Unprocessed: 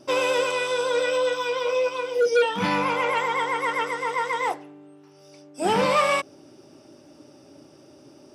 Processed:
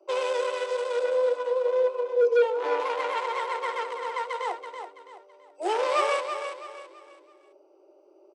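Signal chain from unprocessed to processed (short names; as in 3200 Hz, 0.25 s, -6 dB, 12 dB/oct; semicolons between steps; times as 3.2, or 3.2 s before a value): Wiener smoothing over 25 samples; 1.03–2.8 tilt -3 dB/oct; steep high-pass 340 Hz 96 dB/oct; on a send: feedback echo 0.33 s, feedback 35%, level -8 dB; on the sum: downsampling 22050 Hz; gain -3 dB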